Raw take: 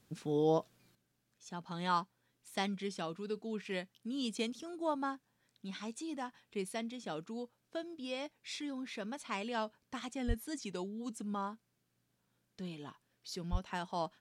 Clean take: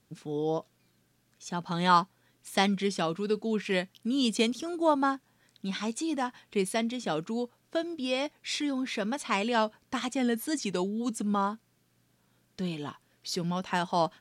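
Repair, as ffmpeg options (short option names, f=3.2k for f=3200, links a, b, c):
-filter_complex "[0:a]asplit=3[a][b][c];[a]afade=t=out:st=10.27:d=0.02[d];[b]highpass=f=140:w=0.5412,highpass=f=140:w=1.3066,afade=t=in:st=10.27:d=0.02,afade=t=out:st=10.39:d=0.02[e];[c]afade=t=in:st=10.39:d=0.02[f];[d][e][f]amix=inputs=3:normalize=0,asplit=3[g][h][i];[g]afade=t=out:st=13.51:d=0.02[j];[h]highpass=f=140:w=0.5412,highpass=f=140:w=1.3066,afade=t=in:st=13.51:d=0.02,afade=t=out:st=13.63:d=0.02[k];[i]afade=t=in:st=13.63:d=0.02[l];[j][k][l]amix=inputs=3:normalize=0,asetnsamples=n=441:p=0,asendcmd='0.95 volume volume 10.5dB',volume=0dB"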